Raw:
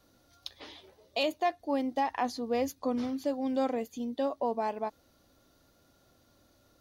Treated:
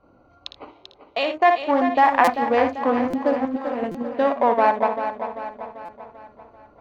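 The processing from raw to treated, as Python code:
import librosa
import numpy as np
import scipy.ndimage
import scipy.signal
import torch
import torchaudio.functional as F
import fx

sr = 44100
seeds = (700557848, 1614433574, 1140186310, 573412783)

p1 = fx.wiener(x, sr, points=25)
p2 = scipy.signal.sosfilt(scipy.signal.butter(4, 10000.0, 'lowpass', fs=sr, output='sos'), p1)
p3 = fx.high_shelf(p2, sr, hz=5000.0, db=-10.0)
p4 = fx.notch(p3, sr, hz=5000.0, q=22.0)
p5 = fx.room_early_taps(p4, sr, ms=(57, 80), db=(-7.5, -16.0))
p6 = fx.level_steps(p5, sr, step_db=17)
p7 = p5 + F.gain(torch.from_numpy(p6), 1.0).numpy()
p8 = fx.comb_fb(p7, sr, f0_hz=110.0, decay_s=1.1, harmonics='all', damping=0.0, mix_pct=50, at=(0.7, 1.33), fade=0.02)
p9 = fx.backlash(p8, sr, play_db=-44.0, at=(1.99, 2.45))
p10 = fx.peak_eq(p9, sr, hz=1500.0, db=14.0, octaves=2.2)
p11 = fx.over_compress(p10, sr, threshold_db=-27.0, ratio=-0.5, at=(3.45, 3.92))
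p12 = p11 + fx.echo_feedback(p11, sr, ms=391, feedback_pct=51, wet_db=-9.0, dry=0)
p13 = fx.buffer_glitch(p12, sr, at_s=(2.24, 3.1, 3.91, 5.85), block=256, repeats=5)
y = F.gain(torch.from_numpy(p13), 2.0).numpy()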